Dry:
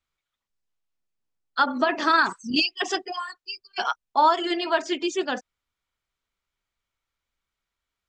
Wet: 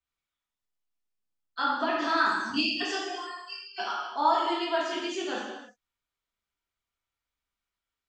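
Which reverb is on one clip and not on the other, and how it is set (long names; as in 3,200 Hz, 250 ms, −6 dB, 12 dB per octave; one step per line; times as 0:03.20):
reverb whose tail is shaped and stops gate 370 ms falling, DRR −5.5 dB
level −11 dB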